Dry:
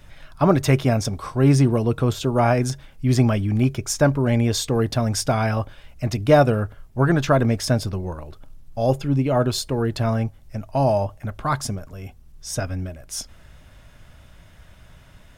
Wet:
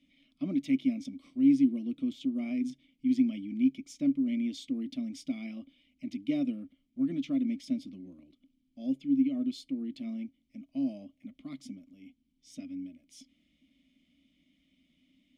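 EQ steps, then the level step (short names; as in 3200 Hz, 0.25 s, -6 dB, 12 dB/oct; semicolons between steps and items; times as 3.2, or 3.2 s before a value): vowel filter i; high shelf 9600 Hz +6 dB; fixed phaser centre 420 Hz, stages 6; 0.0 dB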